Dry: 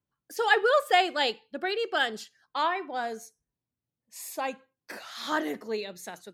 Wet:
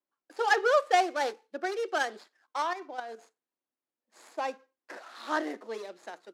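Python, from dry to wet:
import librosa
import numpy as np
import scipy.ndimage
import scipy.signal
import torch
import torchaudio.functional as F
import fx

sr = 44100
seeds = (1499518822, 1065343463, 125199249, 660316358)

y = scipy.ndimage.median_filter(x, 15, mode='constant')
y = scipy.signal.sosfilt(scipy.signal.butter(2, 9200.0, 'lowpass', fs=sr, output='sos'), y)
y = fx.notch(y, sr, hz=430.0, q=12.0)
y = fx.level_steps(y, sr, step_db=10, at=(2.62, 3.19))
y = scipy.signal.sosfilt(scipy.signal.butter(4, 300.0, 'highpass', fs=sr, output='sos'), y)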